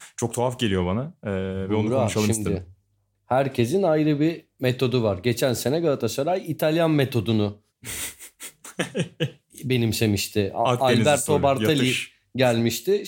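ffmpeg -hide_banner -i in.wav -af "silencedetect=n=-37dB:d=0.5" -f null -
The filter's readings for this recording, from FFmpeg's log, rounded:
silence_start: 2.64
silence_end: 3.31 | silence_duration: 0.67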